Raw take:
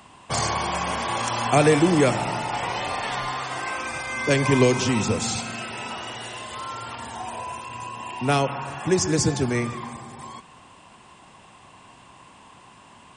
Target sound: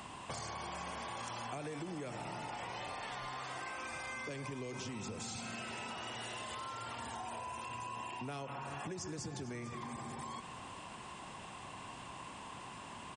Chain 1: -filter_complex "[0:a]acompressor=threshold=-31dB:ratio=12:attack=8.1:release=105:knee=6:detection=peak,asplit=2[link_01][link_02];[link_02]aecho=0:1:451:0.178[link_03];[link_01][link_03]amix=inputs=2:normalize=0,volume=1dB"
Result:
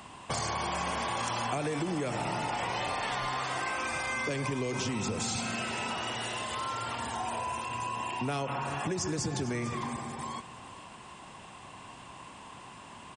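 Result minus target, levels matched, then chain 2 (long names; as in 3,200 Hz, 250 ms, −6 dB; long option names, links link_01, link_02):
downward compressor: peak gain reduction −10.5 dB
-filter_complex "[0:a]acompressor=threshold=-42.5dB:ratio=12:attack=8.1:release=105:knee=6:detection=peak,asplit=2[link_01][link_02];[link_02]aecho=0:1:451:0.178[link_03];[link_01][link_03]amix=inputs=2:normalize=0,volume=1dB"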